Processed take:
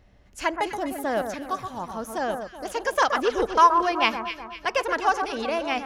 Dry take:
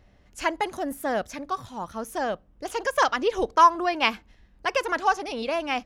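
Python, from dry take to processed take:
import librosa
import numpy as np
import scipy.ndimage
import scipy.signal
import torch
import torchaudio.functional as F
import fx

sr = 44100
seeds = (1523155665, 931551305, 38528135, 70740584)

y = fx.echo_alternate(x, sr, ms=125, hz=1600.0, feedback_pct=65, wet_db=-6.5)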